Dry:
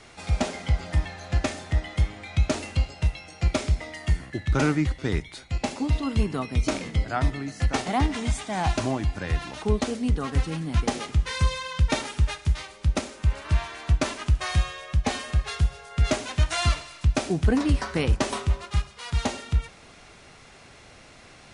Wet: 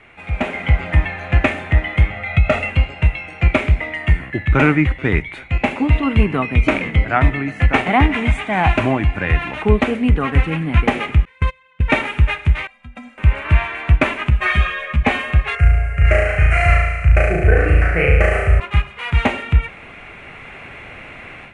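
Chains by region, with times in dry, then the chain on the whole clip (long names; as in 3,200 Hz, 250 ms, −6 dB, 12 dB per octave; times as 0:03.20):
0:02.10–0:02.70: high-shelf EQ 9,100 Hz −7.5 dB + comb filter 1.5 ms, depth 86% + downward compressor, threshold −16 dBFS
0:11.25–0:11.88: noise gate −24 dBFS, range −30 dB + downward compressor, threshold −20 dBFS
0:12.67–0:13.18: Chebyshev band-stop filter 270–570 Hz + stiff-string resonator 240 Hz, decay 0.22 s, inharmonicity 0.008 + downward compressor 4 to 1, threshold −41 dBFS
0:14.30–0:15.03: comb filter 4.9 ms, depth 95% + string-ensemble chorus
0:15.55–0:18.60: phaser with its sweep stopped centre 970 Hz, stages 6 + flutter between parallel walls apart 6.1 metres, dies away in 1.1 s
whole clip: high shelf with overshoot 3,500 Hz −13.5 dB, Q 3; automatic gain control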